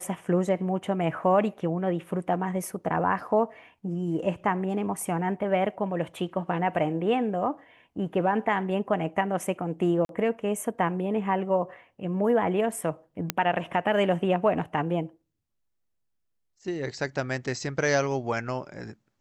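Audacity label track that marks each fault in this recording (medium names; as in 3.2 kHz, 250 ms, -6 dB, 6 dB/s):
10.050000	10.090000	dropout 42 ms
13.300000	13.300000	pop -7 dBFS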